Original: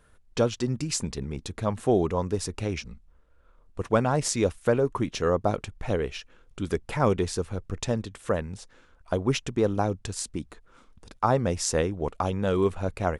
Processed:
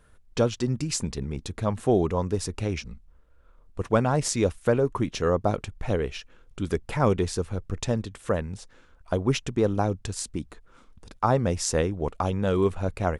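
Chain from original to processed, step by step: low shelf 190 Hz +3 dB

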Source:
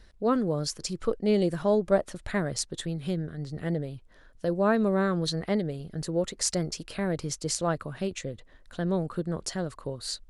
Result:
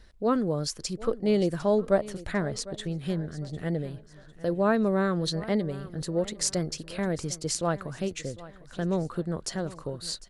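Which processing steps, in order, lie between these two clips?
2.33–2.99 high shelf 8100 Hz -11.5 dB; feedback echo 0.752 s, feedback 38%, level -18 dB

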